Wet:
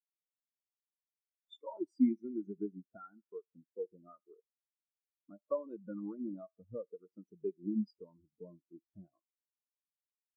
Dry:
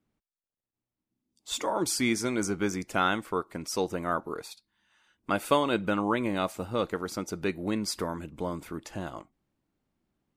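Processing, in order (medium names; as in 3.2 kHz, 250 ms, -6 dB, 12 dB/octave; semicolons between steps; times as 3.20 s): compression 3:1, threshold -31 dBFS, peak gain reduction 10 dB; 2.97–5.39 s: distance through air 490 m; thinning echo 74 ms, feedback 78%, high-pass 460 Hz, level -12 dB; spectral contrast expander 4:1; trim -1.5 dB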